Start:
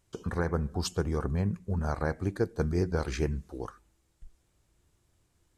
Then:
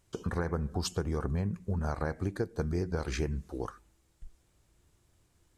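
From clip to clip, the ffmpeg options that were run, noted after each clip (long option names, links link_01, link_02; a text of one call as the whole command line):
ffmpeg -i in.wav -af "acompressor=threshold=-30dB:ratio=6,volume=2dB" out.wav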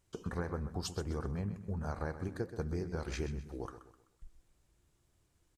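ffmpeg -i in.wav -filter_complex "[0:a]flanger=delay=1.9:depth=4.7:regen=-82:speed=1.9:shape=triangular,asplit=2[link_01][link_02];[link_02]aecho=0:1:128|256|384|512:0.251|0.0955|0.0363|0.0138[link_03];[link_01][link_03]amix=inputs=2:normalize=0,volume=-1dB" out.wav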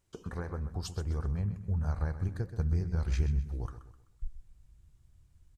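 ffmpeg -i in.wav -af "asubboost=boost=8.5:cutoff=130,volume=-1.5dB" out.wav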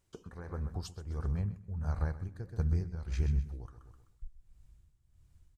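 ffmpeg -i in.wav -af "tremolo=f=1.5:d=0.68" out.wav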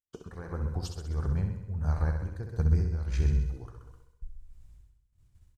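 ffmpeg -i in.wav -af "agate=range=-33dB:threshold=-56dB:ratio=3:detection=peak,aecho=1:1:65|130|195|260|325|390|455|520:0.447|0.268|0.161|0.0965|0.0579|0.0347|0.0208|0.0125,volume=3.5dB" out.wav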